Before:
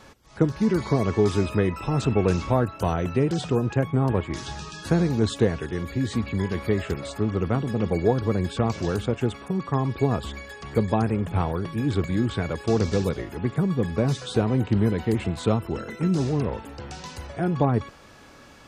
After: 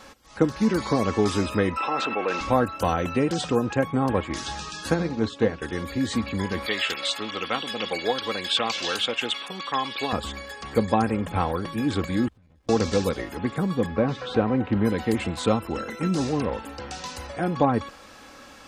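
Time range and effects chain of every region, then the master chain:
0:01.77–0:02.41: band-pass filter 290–3,100 Hz + low-shelf EQ 400 Hz −11 dB + envelope flattener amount 50%
0:04.94–0:05.62: high-frequency loss of the air 100 metres + mains-hum notches 60/120/180/240/300/360/420/480/540 Hz + expander for the loud parts, over −32 dBFS
0:06.66–0:10.13: high-pass filter 770 Hz 6 dB per octave + parametric band 3,200 Hz +14 dB 1.2 octaves
0:12.28–0:12.69: guitar amp tone stack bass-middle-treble 10-0-1 + downward compressor 12 to 1, threshold −49 dBFS + windowed peak hold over 65 samples
0:13.86–0:14.85: low-pass filter 2,400 Hz + upward compression, threshold −29 dBFS
whole clip: low-shelf EQ 400 Hz −7 dB; comb filter 3.8 ms, depth 40%; level +4 dB

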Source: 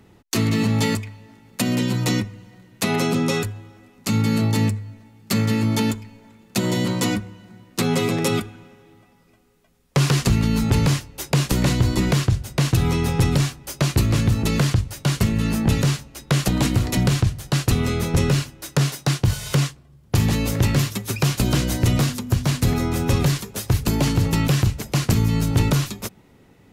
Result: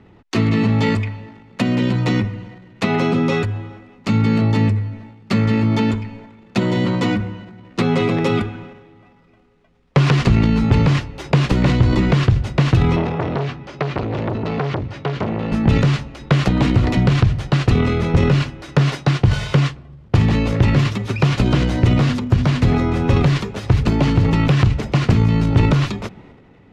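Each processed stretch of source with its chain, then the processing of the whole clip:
0:12.96–0:15.52: high-pass filter 100 Hz + high-frequency loss of the air 120 metres + saturating transformer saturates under 1,000 Hz
whole clip: transient designer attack +2 dB, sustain +8 dB; low-pass filter 2,900 Hz 12 dB per octave; notch filter 1,600 Hz, Q 30; level +3 dB

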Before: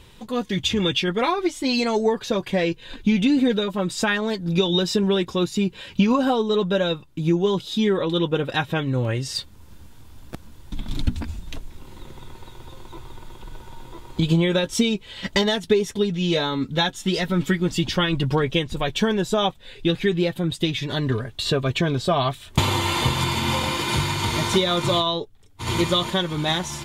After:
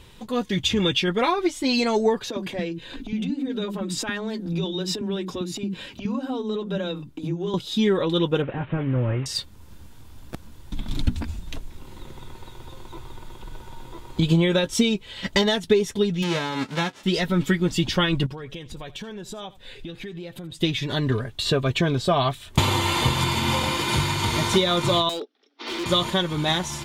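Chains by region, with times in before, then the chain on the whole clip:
0:02.30–0:07.54: parametric band 270 Hz +10 dB 0.87 octaves + downward compressor 12 to 1, threshold −22 dBFS + multiband delay without the direct sound highs, lows 60 ms, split 280 Hz
0:08.42–0:09.26: linear delta modulator 16 kbit/s, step −38.5 dBFS + high-frequency loss of the air 68 metres
0:16.22–0:17.03: spectral envelope flattened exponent 0.3 + high-pass filter 120 Hz + head-to-tape spacing loss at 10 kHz 22 dB
0:18.26–0:20.58: downward compressor 5 to 1, threshold −34 dBFS + single-tap delay 80 ms −19 dB
0:25.09–0:25.86: Chebyshev band-pass filter 250–5,600 Hz, order 5 + parametric band 980 Hz −10.5 dB 0.22 octaves + hard clipping −26 dBFS
whole clip: no processing

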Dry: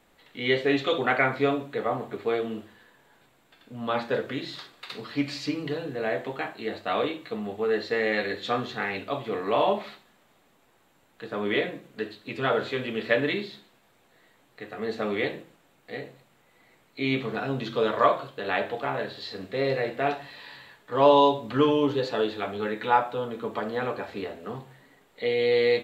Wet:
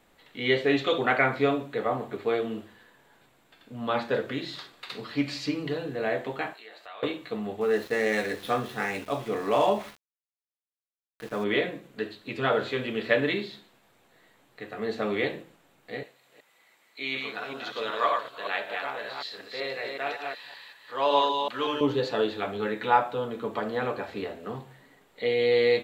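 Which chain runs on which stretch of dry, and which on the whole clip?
0:06.54–0:07.03: high-pass filter 760 Hz + downward compressor 2.5 to 1, threshold −47 dBFS
0:07.61–0:11.44: running median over 9 samples + double-tracking delay 14 ms −13 dB + centre clipping without the shift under −43 dBFS
0:16.03–0:21.81: delay that plays each chunk backwards 188 ms, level −3.5 dB + high-pass filter 1,300 Hz 6 dB per octave
whole clip: no processing

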